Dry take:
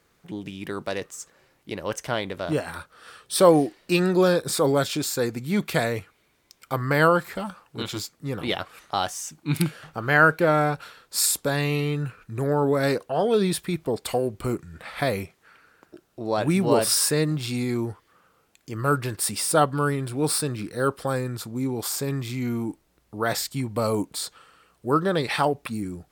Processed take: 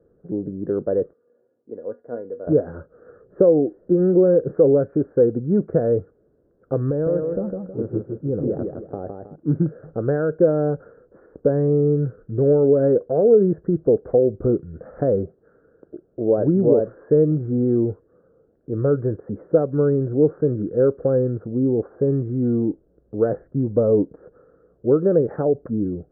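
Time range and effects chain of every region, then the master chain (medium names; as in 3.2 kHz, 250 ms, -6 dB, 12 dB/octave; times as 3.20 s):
1.13–2.47 s: high-pass 110 Hz 24 dB/octave + peaking EQ 150 Hz -10.5 dB 0.79 oct + feedback comb 240 Hz, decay 0.21 s, mix 80%
6.90–9.36 s: peaking EQ 1.6 kHz -7 dB 1.8 oct + compression 10:1, threshold -26 dBFS + modulated delay 159 ms, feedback 36%, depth 97 cents, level -4.5 dB
whole clip: compression 6:1, threshold -21 dBFS; steep low-pass 1.6 kHz 72 dB/octave; resonant low shelf 690 Hz +11.5 dB, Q 3; trim -6 dB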